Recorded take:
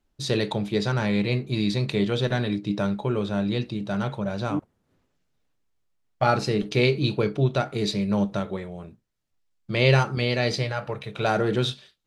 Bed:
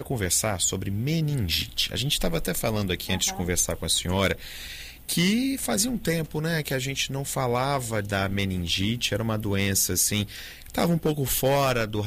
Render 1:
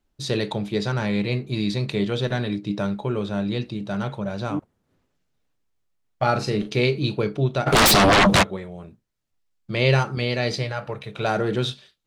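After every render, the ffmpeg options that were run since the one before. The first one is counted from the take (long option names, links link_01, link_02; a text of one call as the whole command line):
ffmpeg -i in.wav -filter_complex "[0:a]asettb=1/sr,asplit=3[link_01][link_02][link_03];[link_01]atrim=end=6.324[link_04];[link_02]atrim=start=6.32:end=6.76,asetpts=PTS-STARTPTS,afade=type=in:duration=0.004:curve=qsin,afade=type=out:start_time=0.436:duration=0.004:curve=qsin,asplit=2[link_05][link_06];[link_06]adelay=38,volume=-9dB[link_07];[link_05][link_07]amix=inputs=2:normalize=0,atrim=end_sample=19404[link_08];[link_03]atrim=start=6.756[link_09];[link_04][link_08]acrossfade=duration=0.004:curve1=hsin:curve2=qsin[link_10];[link_10][link_09]acrossfade=duration=0.004:curve1=qsin:curve2=hsin,asplit=3[link_11][link_12][link_13];[link_11]afade=type=out:start_time=7.66:duration=0.02[link_14];[link_12]aeval=exprs='0.266*sin(PI/2*10*val(0)/0.266)':channel_layout=same,afade=type=in:start_time=7.66:duration=0.02,afade=type=out:start_time=8.42:duration=0.02[link_15];[link_13]afade=type=in:start_time=8.42:duration=0.02[link_16];[link_14][link_15][link_16]amix=inputs=3:normalize=0" out.wav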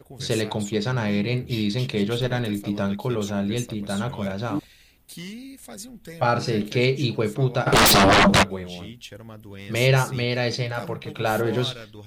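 ffmpeg -i in.wav -i bed.wav -filter_complex "[1:a]volume=-14.5dB[link_01];[0:a][link_01]amix=inputs=2:normalize=0" out.wav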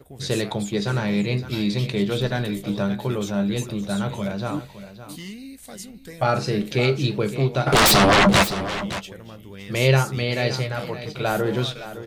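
ffmpeg -i in.wav -filter_complex "[0:a]asplit=2[link_01][link_02];[link_02]adelay=15,volume=-13dB[link_03];[link_01][link_03]amix=inputs=2:normalize=0,aecho=1:1:564:0.224" out.wav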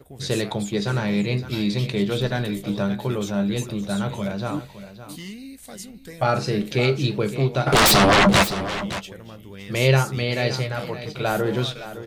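ffmpeg -i in.wav -af anull out.wav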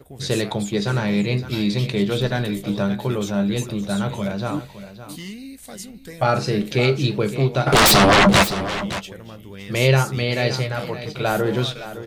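ffmpeg -i in.wav -af "volume=2dB,alimiter=limit=-3dB:level=0:latency=1" out.wav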